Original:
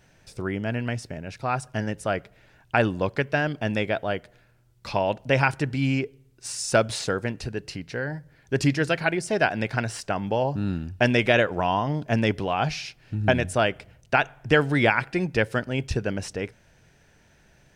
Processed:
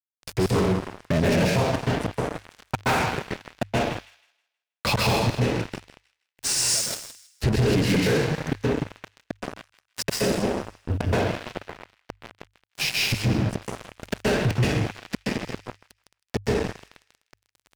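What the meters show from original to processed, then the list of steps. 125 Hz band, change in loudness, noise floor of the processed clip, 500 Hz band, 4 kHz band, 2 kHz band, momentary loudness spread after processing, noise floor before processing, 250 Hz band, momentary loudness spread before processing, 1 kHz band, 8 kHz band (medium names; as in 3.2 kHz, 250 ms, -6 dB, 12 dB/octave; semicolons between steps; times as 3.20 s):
+1.5 dB, +0.5 dB, -85 dBFS, -2.0 dB, +4.0 dB, -4.5 dB, 17 LU, -59 dBFS, +0.5 dB, 12 LU, -3.0 dB, +8.0 dB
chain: inverted gate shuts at -20 dBFS, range -36 dB; high-pass 54 Hz 6 dB/octave; treble shelf 4.3 kHz -8.5 dB; plate-style reverb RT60 0.91 s, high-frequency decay 0.95×, pre-delay 115 ms, DRR -4.5 dB; in parallel at -4 dB: fuzz box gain 38 dB, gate -46 dBFS; on the sum: dynamic bell 1.3 kHz, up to -4 dB, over -36 dBFS, Q 1.4; crossover distortion -39 dBFS; on a send: feedback echo behind a high-pass 159 ms, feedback 31%, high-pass 2 kHz, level -16.5 dB; on the sum: peak limiter -18.5 dBFS, peak gain reduction 7.5 dB; hum notches 50/100 Hz; trim +3 dB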